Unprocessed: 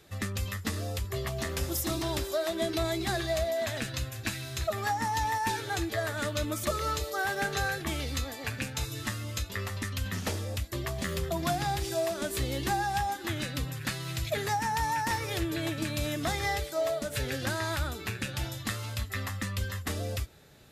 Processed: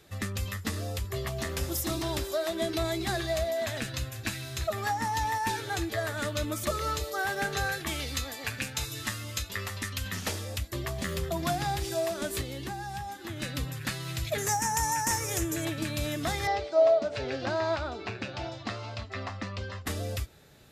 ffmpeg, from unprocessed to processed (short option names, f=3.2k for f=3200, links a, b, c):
-filter_complex "[0:a]asettb=1/sr,asplit=3[a][b][c];[a]atrim=end=7.724[d];[b]atrim=start=7.72:end=10.59,asetpts=PTS-STARTPTS,afade=t=in:d=0.004:c=qsin,afade=t=out:st=2.866:d=0.004:c=qsin,tiltshelf=f=970:g=-3[e];[c]atrim=start=10.586[f];[d][e]acrossfade=d=0.004:c1=hsin:c2=qsin[g];[g][f]acrossfade=d=0.004:c1=qsin:c2=hsin,asettb=1/sr,asplit=3[h][i][j];[h]atrim=end=12.414[k];[i]atrim=start=12.41:end=13.42,asetpts=PTS-STARTPTS,afade=t=in:d=0.004:c=qsin,afade=t=out:st=1.006:d=0.004:c=qsin,acrossover=split=90|230|1200|3900[l][m][n][o][p];[l]acompressor=threshold=-52dB:ratio=3[q];[m]acompressor=threshold=-41dB:ratio=3[r];[n]acompressor=threshold=-42dB:ratio=3[s];[o]acompressor=threshold=-48dB:ratio=3[t];[p]acompressor=threshold=-51dB:ratio=3[u];[q][r][s][t][u]amix=inputs=5:normalize=0[v];[j]atrim=start=13.416[w];[k][v]acrossfade=d=0.004:c1=hsin:c2=qsin[x];[x][w]acrossfade=d=0.004:c1=qsin:c2=hsin,asettb=1/sr,asplit=3[y][z][aa];[y]atrim=end=14.384[ab];[z]atrim=start=14.38:end=15.65,asetpts=PTS-STARTPTS,afade=t=in:d=0.004:c=qsin,afade=t=out:st=1.266:d=0.004:c=qsin,highshelf=f=5.2k:t=q:w=3:g=7.5[ac];[aa]atrim=start=15.646[ad];[ab][ac]acrossfade=d=0.004:c1=hsin:c2=qsin[ae];[ae][ad]acrossfade=d=0.004:c1=qsin:c2=hsin,asettb=1/sr,asplit=3[af][ag][ah];[af]atrim=end=16.474[ai];[ag]atrim=start=16.47:end=19.86,asetpts=PTS-STARTPTS,afade=t=in:d=0.004:c=qsin,afade=t=out:st=3.386:d=0.004:c=qsin,highpass=100,equalizer=f=150:t=q:w=4:g=-10,equalizer=f=380:t=q:w=4:g=4,equalizer=f=680:t=q:w=4:g=10,equalizer=f=970:t=q:w=4:g=3,equalizer=f=1.8k:t=q:w=4:g=-5,equalizer=f=3.4k:t=q:w=4:g=-5,lowpass=f=5.1k:w=0.5412,lowpass=f=5.1k:w=1.3066[aj];[ah]atrim=start=19.856[ak];[ai][aj]acrossfade=d=0.004:c1=hsin:c2=qsin[al];[al][ak]acrossfade=d=0.004:c1=qsin:c2=hsin"